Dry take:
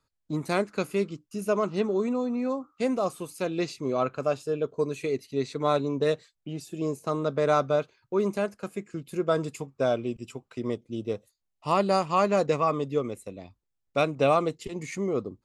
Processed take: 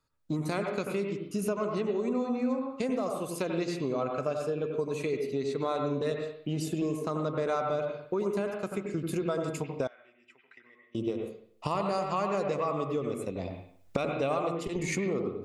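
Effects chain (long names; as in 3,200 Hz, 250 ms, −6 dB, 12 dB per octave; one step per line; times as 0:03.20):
camcorder AGC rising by 21 dB per second
convolution reverb RT60 0.60 s, pre-delay 85 ms, DRR 3.5 dB
downward compressor 2.5 to 1, threshold −25 dBFS, peak gain reduction 7 dB
0:09.87–0:10.95: resonant band-pass 1,900 Hz, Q 7.8
level −3 dB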